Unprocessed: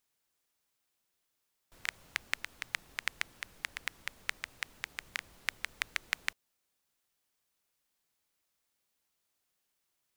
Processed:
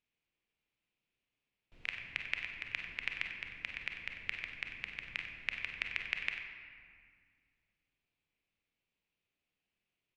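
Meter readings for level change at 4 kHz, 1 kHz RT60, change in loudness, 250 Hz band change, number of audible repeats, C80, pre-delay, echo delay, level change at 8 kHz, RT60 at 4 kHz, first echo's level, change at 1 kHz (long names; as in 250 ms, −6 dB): −3.0 dB, 1.9 s, −1.0 dB, +1.0 dB, 2, 5.0 dB, 26 ms, 44 ms, below −15 dB, 1.3 s, −11.5 dB, −7.5 dB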